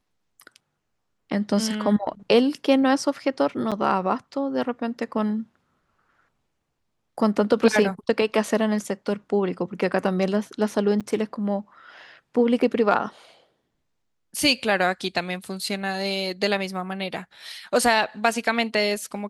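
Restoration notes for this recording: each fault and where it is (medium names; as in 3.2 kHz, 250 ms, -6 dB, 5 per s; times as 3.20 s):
3.71–3.72 s: dropout 7.1 ms
11.00–11.01 s: dropout 6.7 ms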